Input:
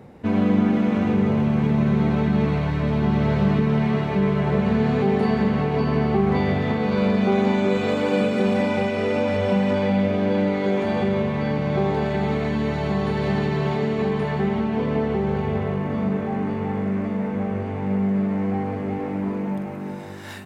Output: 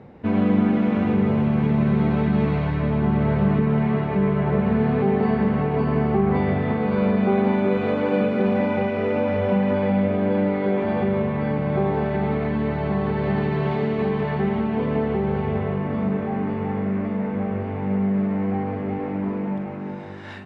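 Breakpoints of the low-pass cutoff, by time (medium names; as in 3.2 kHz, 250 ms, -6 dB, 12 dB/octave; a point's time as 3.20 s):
2.64 s 3.4 kHz
3.06 s 2.2 kHz
13.21 s 2.2 kHz
13.79 s 3.2 kHz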